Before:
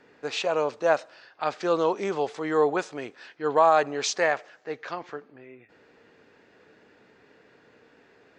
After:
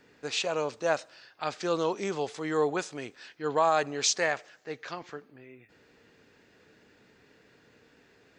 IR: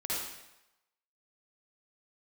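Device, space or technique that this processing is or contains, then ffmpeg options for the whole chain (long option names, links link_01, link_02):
smiley-face EQ: -af "lowshelf=frequency=110:gain=5,equalizer=frequency=740:width_type=o:width=2.9:gain=-6,highshelf=frequency=6800:gain=9"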